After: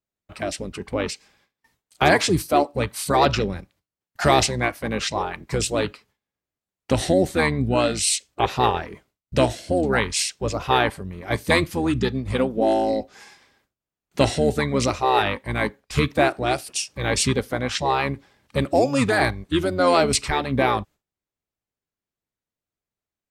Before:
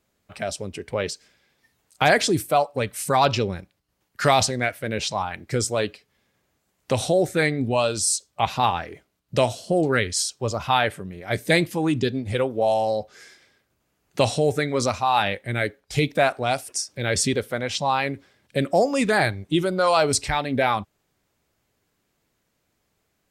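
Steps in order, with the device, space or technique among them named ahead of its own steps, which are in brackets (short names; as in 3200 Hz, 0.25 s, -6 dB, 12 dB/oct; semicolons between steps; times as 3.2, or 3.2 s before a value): 3.54–5.16 HPF 63 Hz 24 dB/oct; octave pedal (harmoniser -12 st -5 dB); gate with hold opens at -53 dBFS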